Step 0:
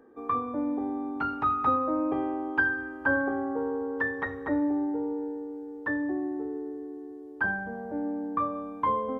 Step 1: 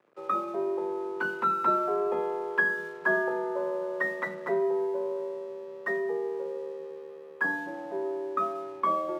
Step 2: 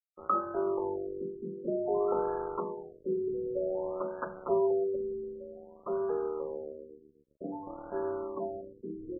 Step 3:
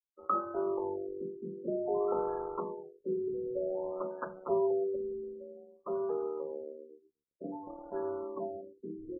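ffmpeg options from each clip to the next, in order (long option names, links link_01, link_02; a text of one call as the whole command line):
ffmpeg -i in.wav -af "aeval=exprs='sgn(val(0))*max(abs(val(0))-0.00188,0)':channel_layout=same,afreqshift=98" out.wav
ffmpeg -i in.wav -af "aeval=exprs='sgn(val(0))*max(abs(val(0))-0.01,0)':channel_layout=same,afftfilt=real='re*lt(b*sr/1024,470*pow(1700/470,0.5+0.5*sin(2*PI*0.53*pts/sr)))':imag='im*lt(b*sr/1024,470*pow(1700/470,0.5+0.5*sin(2*PI*0.53*pts/sr)))':win_size=1024:overlap=0.75,volume=1.5dB" out.wav
ffmpeg -i in.wav -af "afftdn=noise_reduction=25:noise_floor=-43,volume=-2dB" out.wav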